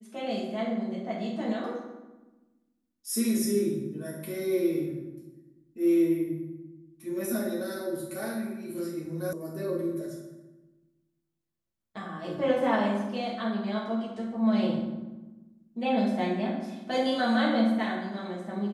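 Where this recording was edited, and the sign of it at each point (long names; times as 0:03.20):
0:09.33: cut off before it has died away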